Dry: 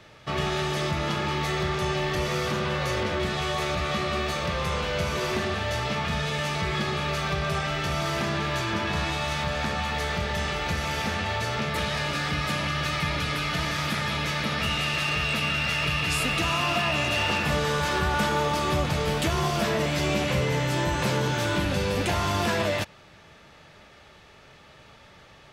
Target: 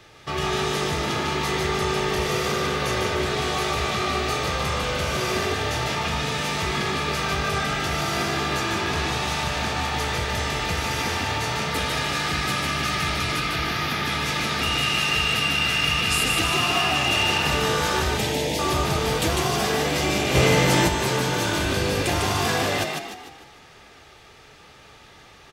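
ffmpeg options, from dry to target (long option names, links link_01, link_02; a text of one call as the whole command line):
ffmpeg -i in.wav -filter_complex "[0:a]asettb=1/sr,asplit=3[link_01][link_02][link_03];[link_01]atrim=end=13.404[link_04];[link_02]atrim=start=13.4:end=14.06,asetpts=PTS-STARTPTS,afade=type=in:duration=0.004:curve=qsin,afade=type=out:start_time=0.656:duration=0.004:curve=qsin,equalizer=frequency=8200:width=1.5:gain=-13[link_05];[link_03]atrim=start=14.056[link_06];[link_04][link_05]acrossfade=duration=0.004:curve1=hsin:curve2=qsin[link_07];[link_07][link_06]acrossfade=duration=0.004:curve1=qsin:curve2=hsin,asettb=1/sr,asplit=3[link_08][link_09][link_10];[link_08]atrim=end=18.024[link_11];[link_09]atrim=start=18.02:end=18.59,asetpts=PTS-STARTPTS,afade=type=in:duration=0.004:curve=qsin,afade=type=out:start_time=0.566:duration=0.004:curve=qsin,asuperstop=centerf=1200:order=8:qfactor=1.2[link_12];[link_10]atrim=start=18.586[link_13];[link_11][link_12]acrossfade=duration=0.004:curve1=hsin:curve2=qsin[link_14];[link_14][link_13]acrossfade=duration=0.004:curve1=qsin:curve2=hsin,asplit=7[link_15][link_16][link_17][link_18][link_19][link_20][link_21];[link_16]adelay=150,afreqshift=51,volume=-3.5dB[link_22];[link_17]adelay=300,afreqshift=102,volume=-10.6dB[link_23];[link_18]adelay=450,afreqshift=153,volume=-17.8dB[link_24];[link_19]adelay=600,afreqshift=204,volume=-24.9dB[link_25];[link_20]adelay=750,afreqshift=255,volume=-32dB[link_26];[link_21]adelay=900,afreqshift=306,volume=-39.2dB[link_27];[link_15][link_22][link_23][link_24][link_25][link_26][link_27]amix=inputs=7:normalize=0,asplit=3[link_28][link_29][link_30];[link_28]afade=type=out:start_time=20.34:duration=0.02[link_31];[link_29]acontrast=38,afade=type=in:start_time=20.34:duration=0.02,afade=type=out:start_time=20.87:duration=0.02[link_32];[link_30]afade=type=in:start_time=20.87:duration=0.02[link_33];[link_31][link_32][link_33]amix=inputs=3:normalize=0,highshelf=frequency=4600:gain=6.5,aecho=1:1:2.5:0.36" out.wav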